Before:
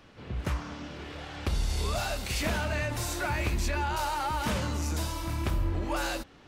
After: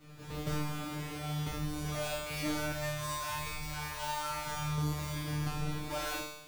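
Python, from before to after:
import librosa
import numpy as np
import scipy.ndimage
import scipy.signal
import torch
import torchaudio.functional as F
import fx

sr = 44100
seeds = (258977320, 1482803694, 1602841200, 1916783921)

y = fx.halfwave_hold(x, sr)
y = fx.rider(y, sr, range_db=5, speed_s=0.5)
y = fx.comb_fb(y, sr, f0_hz=150.0, decay_s=0.94, harmonics='all', damping=0.0, mix_pct=100)
y = fx.peak_eq(y, sr, hz=310.0, db=-13.5, octaves=1.4, at=(2.72, 4.78))
y = fx.room_flutter(y, sr, wall_m=9.0, rt60_s=0.37)
y = y * librosa.db_to_amplitude(8.5)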